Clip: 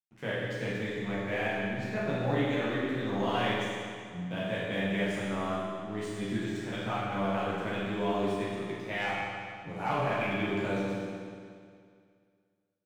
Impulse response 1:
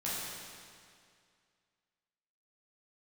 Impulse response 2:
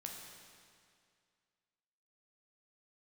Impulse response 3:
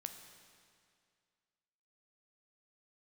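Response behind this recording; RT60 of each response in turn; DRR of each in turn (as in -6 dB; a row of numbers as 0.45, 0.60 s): 1; 2.2, 2.2, 2.2 s; -9.0, 0.0, 6.0 dB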